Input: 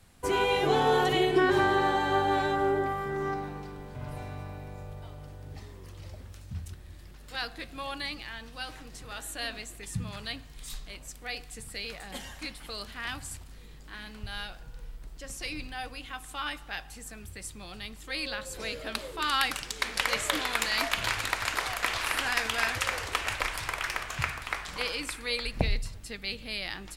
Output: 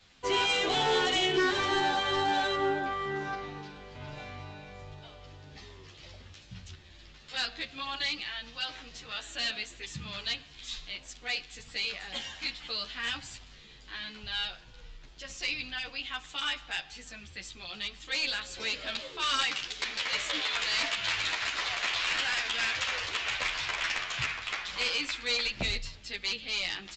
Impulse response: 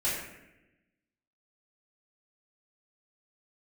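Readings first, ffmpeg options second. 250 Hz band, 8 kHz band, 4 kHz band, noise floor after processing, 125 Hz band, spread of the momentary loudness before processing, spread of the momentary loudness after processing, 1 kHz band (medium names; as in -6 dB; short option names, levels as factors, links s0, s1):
-5.0 dB, -2.5 dB, +4.0 dB, -53 dBFS, -7.5 dB, 19 LU, 19 LU, -3.5 dB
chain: -filter_complex "[0:a]equalizer=f=3300:t=o:w=1.6:g=11,alimiter=limit=0.376:level=0:latency=1:release=419,lowshelf=f=150:g=-5.5,aresample=16000,asoftclip=type=hard:threshold=0.0891,aresample=44100,asplit=2[s0][s1];[s1]adelay=10.9,afreqshift=-2.2[s2];[s0][s2]amix=inputs=2:normalize=1"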